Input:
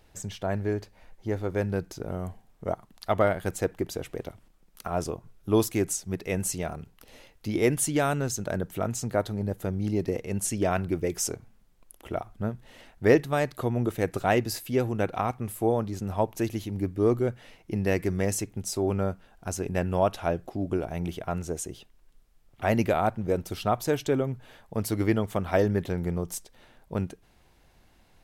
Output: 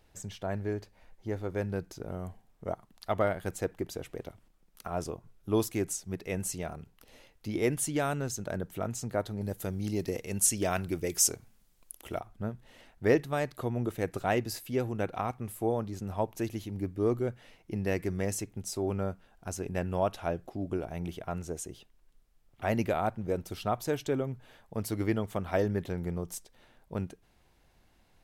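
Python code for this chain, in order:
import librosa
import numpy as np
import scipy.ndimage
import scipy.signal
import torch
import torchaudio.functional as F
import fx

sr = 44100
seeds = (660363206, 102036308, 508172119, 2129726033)

y = fx.high_shelf(x, sr, hz=3000.0, db=11.5, at=(9.41, 12.19))
y = F.gain(torch.from_numpy(y), -5.0).numpy()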